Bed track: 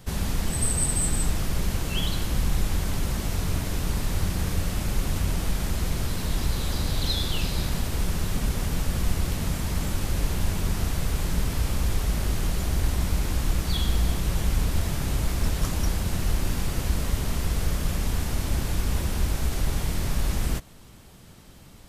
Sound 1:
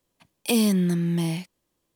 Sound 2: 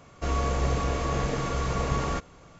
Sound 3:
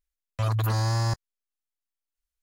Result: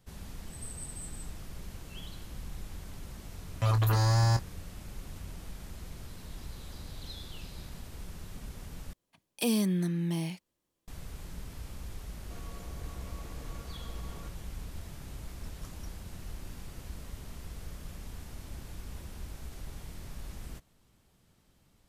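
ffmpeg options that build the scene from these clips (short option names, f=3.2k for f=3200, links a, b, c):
-filter_complex "[0:a]volume=-17.5dB[a];[3:a]asplit=2[b][c];[c]adelay=25,volume=-9.5dB[d];[b][d]amix=inputs=2:normalize=0[e];[2:a]alimiter=limit=-23.5dB:level=0:latency=1:release=71[f];[a]asplit=2[g][h];[g]atrim=end=8.934[i];[1:a]atrim=end=1.95,asetpts=PTS-STARTPTS,volume=-7dB[j];[h]atrim=start=10.876[k];[e]atrim=end=2.42,asetpts=PTS-STARTPTS,volume=-1dB,afade=t=in:d=0.004:c=hsin,afade=t=out:st=2.416:d=0.004:c=hsin,adelay=3230[l];[f]atrim=end=2.59,asetpts=PTS-STARTPTS,volume=-17dB,afade=t=in:d=0.004:c=hsin,afade=t=out:st=2.586:d=0.004:c=hsin,adelay=12090[m];[i][j]acrossfade=d=0.004:c1=hsin:c2=hsin[n];[n][k]acrossfade=d=0.004:c1=hsin:c2=hsin[o];[o][l][m]amix=inputs=3:normalize=0"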